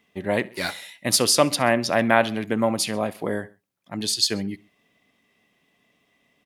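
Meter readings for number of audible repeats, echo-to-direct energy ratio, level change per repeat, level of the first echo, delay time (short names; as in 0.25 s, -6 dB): 2, -21.5 dB, -5.0 dB, -22.5 dB, 66 ms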